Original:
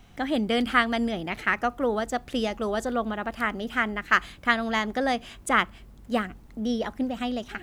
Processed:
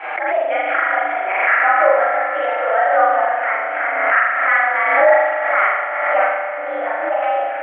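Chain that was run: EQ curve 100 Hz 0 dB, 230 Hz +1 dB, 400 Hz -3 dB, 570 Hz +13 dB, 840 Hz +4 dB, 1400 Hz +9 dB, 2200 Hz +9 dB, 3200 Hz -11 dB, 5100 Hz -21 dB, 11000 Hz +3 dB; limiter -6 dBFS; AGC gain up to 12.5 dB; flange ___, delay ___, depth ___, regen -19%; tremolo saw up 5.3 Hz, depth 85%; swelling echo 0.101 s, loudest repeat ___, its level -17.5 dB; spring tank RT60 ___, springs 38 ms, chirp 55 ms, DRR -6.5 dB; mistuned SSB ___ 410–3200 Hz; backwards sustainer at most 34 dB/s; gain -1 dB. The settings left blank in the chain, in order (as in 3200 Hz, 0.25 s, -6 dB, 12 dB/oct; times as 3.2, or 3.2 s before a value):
0.38 Hz, 6.7 ms, 6.5 ms, 5, 1.1 s, +61 Hz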